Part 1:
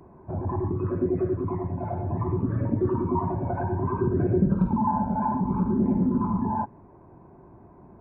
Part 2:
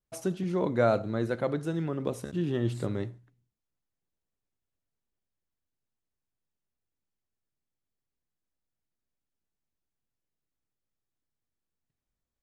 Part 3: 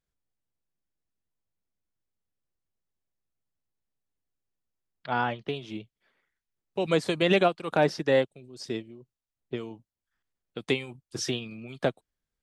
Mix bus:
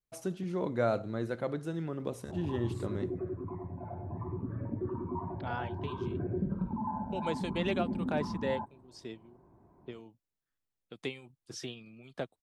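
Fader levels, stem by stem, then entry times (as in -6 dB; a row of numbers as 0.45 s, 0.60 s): -11.5 dB, -5.0 dB, -11.0 dB; 2.00 s, 0.00 s, 0.35 s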